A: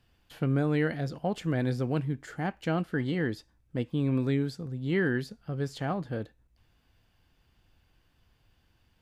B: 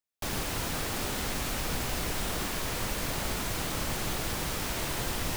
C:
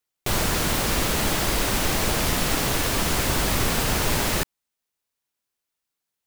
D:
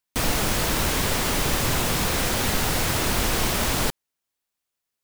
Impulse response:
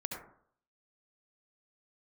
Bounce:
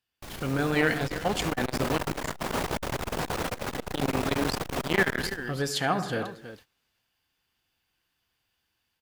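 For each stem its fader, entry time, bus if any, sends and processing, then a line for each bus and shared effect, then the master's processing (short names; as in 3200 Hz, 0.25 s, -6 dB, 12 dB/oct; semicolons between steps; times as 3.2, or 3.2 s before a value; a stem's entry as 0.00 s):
-1.0 dB, 0.00 s, muted 2.36–3.53, send -8.5 dB, echo send -11 dB, AGC gain up to 8.5 dB; tilt +3.5 dB/oct; notch 590 Hz, Q 12
-8.5 dB, 0.00 s, send -6 dB, echo send -14.5 dB, dry
-16.5 dB, 0.75 s, send -12.5 dB, no echo send, LPF 6100 Hz; fast leveller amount 70%
-9.5 dB, 1.25 s, send -11 dB, no echo send, bell 650 Hz +8.5 dB 2.9 oct; AGC gain up to 6 dB; auto duck -7 dB, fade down 0.95 s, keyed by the first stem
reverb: on, RT60 0.60 s, pre-delay 62 ms
echo: echo 0.326 s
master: gate -50 dBFS, range -17 dB; high shelf 3800 Hz -4 dB; core saturation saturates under 710 Hz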